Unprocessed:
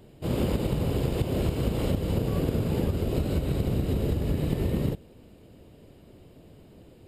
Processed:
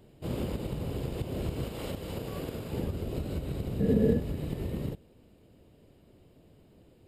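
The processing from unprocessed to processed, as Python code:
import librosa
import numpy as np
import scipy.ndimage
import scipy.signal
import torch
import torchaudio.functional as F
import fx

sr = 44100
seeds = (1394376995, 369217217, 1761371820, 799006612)

y = fx.low_shelf(x, sr, hz=390.0, db=-9.5, at=(1.64, 2.73))
y = fx.rider(y, sr, range_db=3, speed_s=0.5)
y = fx.small_body(y, sr, hz=(220.0, 450.0, 1700.0), ring_ms=45, db=18, at=(3.8, 4.2))
y = y * 10.0 ** (-6.5 / 20.0)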